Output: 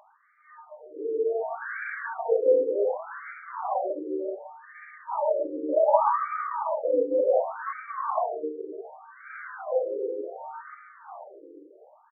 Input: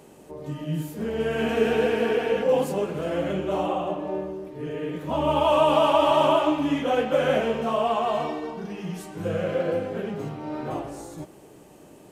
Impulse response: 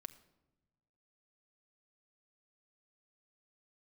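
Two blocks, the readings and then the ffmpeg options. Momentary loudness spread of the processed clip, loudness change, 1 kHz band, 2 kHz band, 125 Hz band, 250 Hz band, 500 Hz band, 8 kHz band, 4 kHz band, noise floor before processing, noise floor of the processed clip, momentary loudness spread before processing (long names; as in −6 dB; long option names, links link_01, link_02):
22 LU, −2.5 dB, −3.5 dB, −4.5 dB, below −40 dB, −11.5 dB, −2.5 dB, can't be measured, below −40 dB, −49 dBFS, −57 dBFS, 15 LU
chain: -af "bandreject=frequency=60:width_type=h:width=6,bandreject=frequency=120:width_type=h:width=6,bandreject=frequency=180:width_type=h:width=6,bandreject=frequency=240:width_type=h:width=6,bandreject=frequency=300:width_type=h:width=6,bandreject=frequency=360:width_type=h:width=6,bandreject=frequency=420:width_type=h:width=6,bandreject=frequency=480:width_type=h:width=6,bandreject=frequency=540:width_type=h:width=6,bandreject=frequency=600:width_type=h:width=6,aecho=1:1:368:0.376,afftfilt=real='re*between(b*sr/1024,370*pow(1700/370,0.5+0.5*sin(2*PI*0.67*pts/sr))/1.41,370*pow(1700/370,0.5+0.5*sin(2*PI*0.67*pts/sr))*1.41)':imag='im*between(b*sr/1024,370*pow(1700/370,0.5+0.5*sin(2*PI*0.67*pts/sr))/1.41,370*pow(1700/370,0.5+0.5*sin(2*PI*0.67*pts/sr))*1.41)':win_size=1024:overlap=0.75,volume=1.5dB"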